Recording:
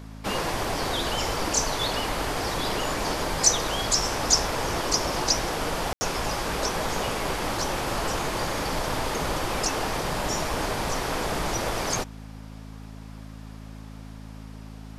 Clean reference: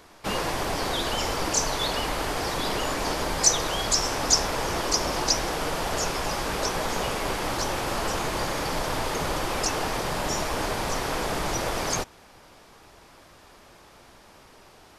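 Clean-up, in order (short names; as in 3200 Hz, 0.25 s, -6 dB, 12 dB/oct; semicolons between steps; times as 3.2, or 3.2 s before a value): de-hum 53.6 Hz, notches 5; room tone fill 5.93–6.01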